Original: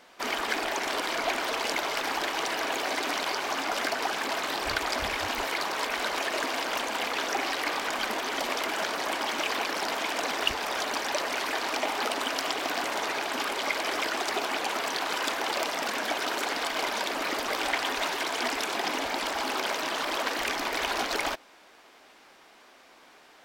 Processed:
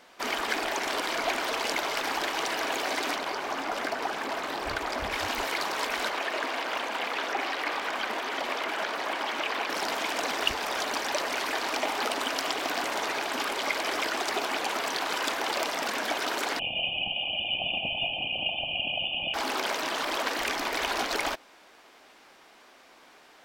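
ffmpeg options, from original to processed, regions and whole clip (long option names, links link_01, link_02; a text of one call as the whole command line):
ffmpeg -i in.wav -filter_complex "[0:a]asettb=1/sr,asplit=3[link_01][link_02][link_03];[link_01]atrim=end=3.154[link_04];[link_02]atrim=start=3.15:end=5.12,asetpts=PTS-STARTPTS,afade=type=in:duration=0.004:curve=qsin,afade=type=out:start_time=1.966:duration=0.004:curve=qsin,highshelf=frequency=2400:gain=-8,asoftclip=type=hard:threshold=-20.5dB[link_05];[link_03]atrim=start=5.116[link_06];[link_04][link_05]acrossfade=duration=0.004:curve1=hsin:curve2=qsin[link_07];[link_07][link_06]acrossfade=duration=0.004:curve1=qsin:curve2=hsin,asettb=1/sr,asplit=3[link_08][link_09][link_10];[link_08]atrim=end=6.094[link_11];[link_09]atrim=start=6.09:end=9.7,asetpts=PTS-STARTPTS,afade=type=in:duration=0.004:curve=qsin,afade=type=out:start_time=3.606:duration=0.004:curve=qsin,lowshelf=frequency=210:gain=-8.5,acrossover=split=3900[link_12][link_13];[link_13]acompressor=threshold=-46dB:ratio=4:attack=1:release=60[link_14];[link_12][link_14]amix=inputs=2:normalize=0[link_15];[link_10]atrim=start=9.696[link_16];[link_11][link_15]acrossfade=duration=0.004:curve1=hsin:curve2=qsin[link_17];[link_17][link_16]acrossfade=duration=0.004:curve1=qsin:curve2=hsin,asettb=1/sr,asplit=3[link_18][link_19][link_20];[link_18]atrim=end=16.594[link_21];[link_19]atrim=start=16.59:end=19.34,asetpts=PTS-STARTPTS,afade=type=in:duration=0.004:curve=qsin,afade=type=out:start_time=2.746:duration=0.004:curve=qsin,asuperstop=centerf=1700:order=20:qfactor=1.1,aecho=1:1:1.8:0.98,atrim=end_sample=121275,lowpass=frequency=3000:width_type=q:width=0.5098,lowpass=frequency=3000:width_type=q:width=0.6013,lowpass=frequency=3000:width_type=q:width=0.9,lowpass=frequency=3000:width_type=q:width=2.563,afreqshift=-3500[link_22];[link_20]atrim=start=19.336[link_23];[link_21][link_22]acrossfade=duration=0.004:curve1=hsin:curve2=qsin[link_24];[link_24][link_23]acrossfade=duration=0.004:curve1=qsin:curve2=hsin" out.wav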